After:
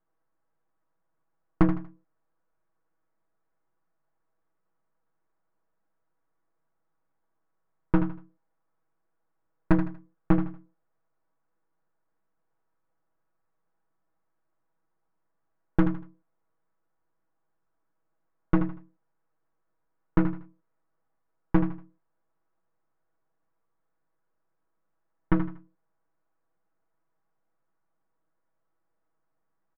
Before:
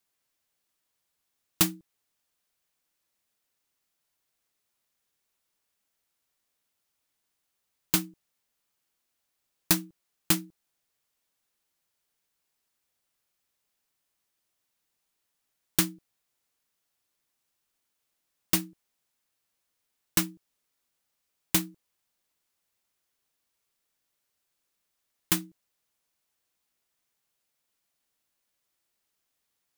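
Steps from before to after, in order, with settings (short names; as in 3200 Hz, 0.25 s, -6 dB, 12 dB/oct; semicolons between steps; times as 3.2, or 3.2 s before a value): half-wave gain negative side -12 dB; LPF 1400 Hz 24 dB/oct; comb 6.2 ms, depth 62%; hard clip -13 dBFS, distortion -30 dB; feedback echo 79 ms, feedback 30%, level -9 dB; gain +7.5 dB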